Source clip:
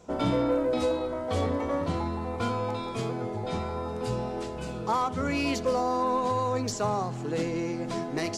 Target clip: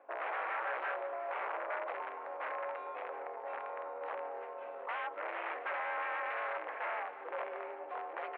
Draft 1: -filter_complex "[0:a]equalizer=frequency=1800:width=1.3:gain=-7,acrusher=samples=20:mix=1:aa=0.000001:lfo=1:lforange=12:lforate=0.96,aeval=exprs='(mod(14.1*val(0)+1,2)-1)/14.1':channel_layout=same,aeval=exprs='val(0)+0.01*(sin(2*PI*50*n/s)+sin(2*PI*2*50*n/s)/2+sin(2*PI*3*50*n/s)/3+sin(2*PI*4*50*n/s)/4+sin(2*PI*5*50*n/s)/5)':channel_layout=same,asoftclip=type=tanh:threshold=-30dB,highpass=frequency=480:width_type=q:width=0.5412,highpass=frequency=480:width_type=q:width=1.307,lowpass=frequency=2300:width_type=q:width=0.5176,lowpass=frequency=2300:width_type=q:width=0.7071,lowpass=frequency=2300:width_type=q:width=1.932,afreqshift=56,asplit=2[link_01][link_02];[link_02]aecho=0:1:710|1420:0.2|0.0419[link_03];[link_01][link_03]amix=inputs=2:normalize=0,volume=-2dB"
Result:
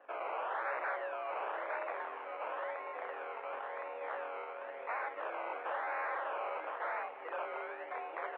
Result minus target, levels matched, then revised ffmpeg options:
sample-and-hold swept by an LFO: distortion +10 dB
-filter_complex "[0:a]equalizer=frequency=1800:width=1.3:gain=-7,acrusher=samples=6:mix=1:aa=0.000001:lfo=1:lforange=3.6:lforate=0.96,aeval=exprs='(mod(14.1*val(0)+1,2)-1)/14.1':channel_layout=same,aeval=exprs='val(0)+0.01*(sin(2*PI*50*n/s)+sin(2*PI*2*50*n/s)/2+sin(2*PI*3*50*n/s)/3+sin(2*PI*4*50*n/s)/4+sin(2*PI*5*50*n/s)/5)':channel_layout=same,asoftclip=type=tanh:threshold=-30dB,highpass=frequency=480:width_type=q:width=0.5412,highpass=frequency=480:width_type=q:width=1.307,lowpass=frequency=2300:width_type=q:width=0.5176,lowpass=frequency=2300:width_type=q:width=0.7071,lowpass=frequency=2300:width_type=q:width=1.932,afreqshift=56,asplit=2[link_01][link_02];[link_02]aecho=0:1:710|1420:0.2|0.0419[link_03];[link_01][link_03]amix=inputs=2:normalize=0,volume=-2dB"

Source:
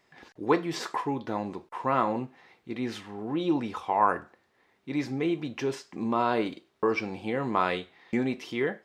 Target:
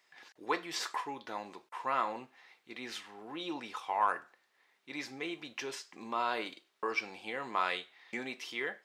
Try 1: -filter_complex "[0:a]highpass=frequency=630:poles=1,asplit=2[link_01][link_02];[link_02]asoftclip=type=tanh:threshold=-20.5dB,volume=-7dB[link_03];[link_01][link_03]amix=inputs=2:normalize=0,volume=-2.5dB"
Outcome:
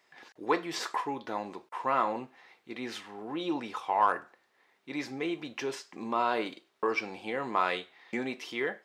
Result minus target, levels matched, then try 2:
500 Hz band +3.0 dB
-filter_complex "[0:a]highpass=frequency=1800:poles=1,asplit=2[link_01][link_02];[link_02]asoftclip=type=tanh:threshold=-20.5dB,volume=-7dB[link_03];[link_01][link_03]amix=inputs=2:normalize=0,volume=-2.5dB"

